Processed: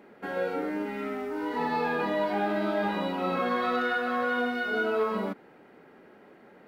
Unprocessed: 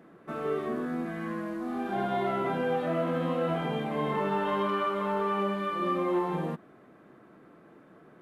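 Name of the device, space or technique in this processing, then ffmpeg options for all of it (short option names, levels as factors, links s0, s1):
nightcore: -af "asetrate=54243,aresample=44100,volume=1.12"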